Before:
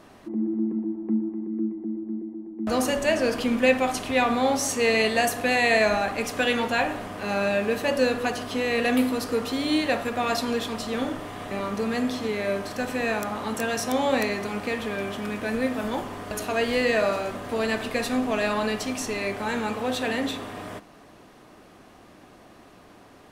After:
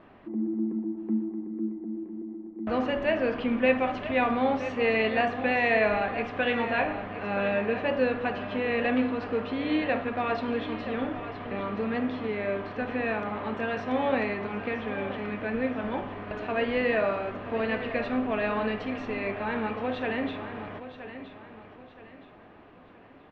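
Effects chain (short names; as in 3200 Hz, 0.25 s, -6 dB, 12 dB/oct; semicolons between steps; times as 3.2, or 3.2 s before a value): LPF 2900 Hz 24 dB/oct; on a send: feedback echo 0.971 s, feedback 35%, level -12 dB; on the sum: gain -3 dB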